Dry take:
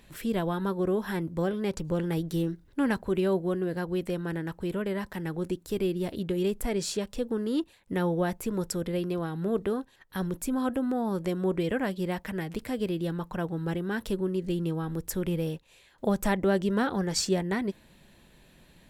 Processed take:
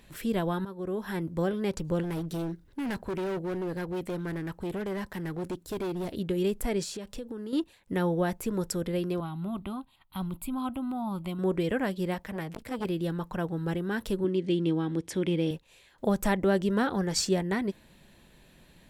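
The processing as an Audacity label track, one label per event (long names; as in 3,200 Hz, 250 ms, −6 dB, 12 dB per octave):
0.650000	1.300000	fade in, from −14 dB
2.030000	6.130000	hard clipping −29.5 dBFS
6.830000	7.530000	downward compressor, threshold −34 dBFS
9.200000	11.390000	phaser with its sweep stopped centre 1,700 Hz, stages 6
12.140000	12.850000	saturating transformer saturates under 830 Hz
14.240000	15.510000	loudspeaker in its box 110–8,900 Hz, peaks and dips at 310 Hz +8 dB, 1,300 Hz −3 dB, 2,200 Hz +6 dB, 3,300 Hz +7 dB, 7,400 Hz −6 dB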